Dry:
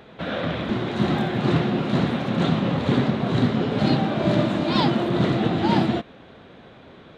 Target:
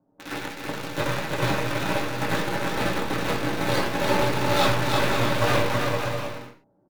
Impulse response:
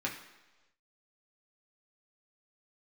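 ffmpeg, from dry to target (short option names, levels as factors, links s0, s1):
-filter_complex "[0:a]highpass=f=210:w=0.5412,highpass=f=210:w=1.3066,lowshelf=f=330:g=-5,aeval=exprs='val(0)*sin(2*PI*230*n/s)':c=same,aeval=exprs='0.282*(cos(1*acos(clip(val(0)/0.282,-1,1)))-cos(1*PI/2))+0.0224*(cos(7*acos(clip(val(0)/0.282,-1,1)))-cos(7*PI/2))+0.002*(cos(8*acos(clip(val(0)/0.282,-1,1)))-cos(8*PI/2))':c=same,acrossover=split=760[s0][s1];[s1]acrusher=bits=5:mix=0:aa=0.000001[s2];[s0][s2]amix=inputs=2:normalize=0,aeval=exprs='0.266*(cos(1*acos(clip(val(0)/0.266,-1,1)))-cos(1*PI/2))+0.00473*(cos(3*acos(clip(val(0)/0.266,-1,1)))-cos(3*PI/2))+0.0299*(cos(7*acos(clip(val(0)/0.266,-1,1)))-cos(7*PI/2))+0.0188*(cos(8*acos(clip(val(0)/0.266,-1,1)))-cos(8*PI/2))':c=same,asplit=2[s3][s4];[s4]aeval=exprs='0.251*sin(PI/2*3.16*val(0)/0.251)':c=same,volume=0.299[s5];[s3][s5]amix=inputs=2:normalize=0,aecho=1:1:340|544|666.4|739.8|783.9:0.631|0.398|0.251|0.158|0.1[s6];[1:a]atrim=start_sample=2205,atrim=end_sample=6174[s7];[s6][s7]afir=irnorm=-1:irlink=0,asetrate=45938,aresample=44100"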